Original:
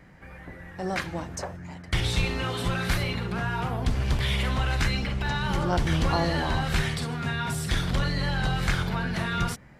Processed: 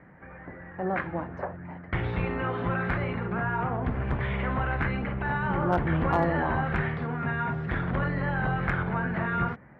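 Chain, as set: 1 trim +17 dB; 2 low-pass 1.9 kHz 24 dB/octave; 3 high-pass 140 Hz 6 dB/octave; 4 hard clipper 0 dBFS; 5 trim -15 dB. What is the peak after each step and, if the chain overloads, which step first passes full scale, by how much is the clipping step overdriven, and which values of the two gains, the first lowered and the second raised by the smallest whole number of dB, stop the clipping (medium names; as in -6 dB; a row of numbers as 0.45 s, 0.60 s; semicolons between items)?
+6.0 dBFS, +5.0 dBFS, +3.5 dBFS, 0.0 dBFS, -15.0 dBFS; step 1, 3.5 dB; step 1 +13 dB, step 5 -11 dB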